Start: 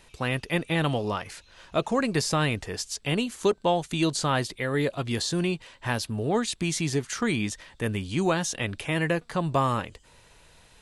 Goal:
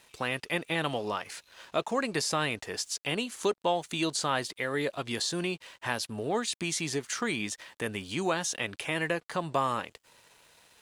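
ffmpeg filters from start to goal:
ffmpeg -i in.wav -filter_complex "[0:a]highpass=frequency=390:poles=1,asplit=2[link_01][link_02];[link_02]acompressor=threshold=-38dB:ratio=5,volume=2dB[link_03];[link_01][link_03]amix=inputs=2:normalize=0,aeval=exprs='sgn(val(0))*max(abs(val(0))-0.00188,0)':channel_layout=same,volume=-4dB" out.wav

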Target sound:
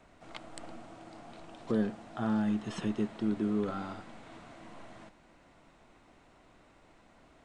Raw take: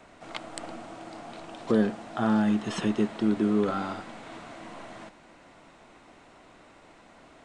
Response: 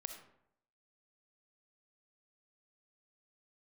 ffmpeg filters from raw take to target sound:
-af "lowshelf=frequency=130:gain=9.5,volume=-8.5dB"

